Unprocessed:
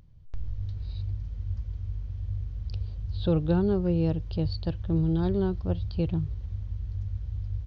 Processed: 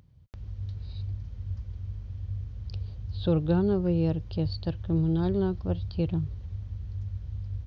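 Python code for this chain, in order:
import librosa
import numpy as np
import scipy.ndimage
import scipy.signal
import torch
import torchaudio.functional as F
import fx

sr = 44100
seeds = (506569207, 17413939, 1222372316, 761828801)

y = scipy.signal.sosfilt(scipy.signal.butter(2, 65.0, 'highpass', fs=sr, output='sos'), x)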